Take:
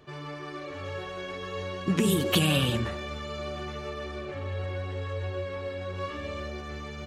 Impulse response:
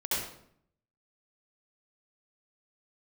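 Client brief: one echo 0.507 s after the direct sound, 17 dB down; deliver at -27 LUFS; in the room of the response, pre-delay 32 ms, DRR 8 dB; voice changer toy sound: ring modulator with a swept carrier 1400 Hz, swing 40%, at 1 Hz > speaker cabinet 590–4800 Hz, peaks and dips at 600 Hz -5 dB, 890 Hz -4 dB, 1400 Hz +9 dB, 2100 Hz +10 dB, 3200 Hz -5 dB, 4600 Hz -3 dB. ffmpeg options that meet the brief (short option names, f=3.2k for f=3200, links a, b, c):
-filter_complex "[0:a]aecho=1:1:507:0.141,asplit=2[a][b];[1:a]atrim=start_sample=2205,adelay=32[c];[b][c]afir=irnorm=-1:irlink=0,volume=-15.5dB[d];[a][d]amix=inputs=2:normalize=0,aeval=exprs='val(0)*sin(2*PI*1400*n/s+1400*0.4/1*sin(2*PI*1*n/s))':c=same,highpass=590,equalizer=f=600:t=q:w=4:g=-5,equalizer=f=890:t=q:w=4:g=-4,equalizer=f=1.4k:t=q:w=4:g=9,equalizer=f=2.1k:t=q:w=4:g=10,equalizer=f=3.2k:t=q:w=4:g=-5,equalizer=f=4.6k:t=q:w=4:g=-3,lowpass=f=4.8k:w=0.5412,lowpass=f=4.8k:w=1.3066,volume=-1dB"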